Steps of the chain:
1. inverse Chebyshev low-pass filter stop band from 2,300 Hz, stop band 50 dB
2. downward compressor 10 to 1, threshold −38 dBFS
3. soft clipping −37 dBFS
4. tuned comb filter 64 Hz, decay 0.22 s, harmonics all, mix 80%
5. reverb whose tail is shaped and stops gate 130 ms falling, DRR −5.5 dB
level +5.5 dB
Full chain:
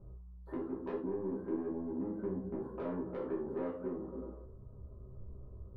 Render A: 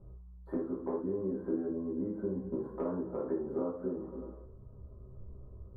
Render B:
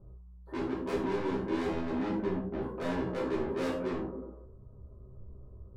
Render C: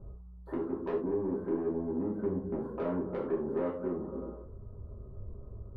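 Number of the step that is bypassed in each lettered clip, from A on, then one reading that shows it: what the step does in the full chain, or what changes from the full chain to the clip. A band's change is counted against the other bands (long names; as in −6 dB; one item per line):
3, distortion level −12 dB
2, change in momentary loudness spread +5 LU
4, change in integrated loudness +5.0 LU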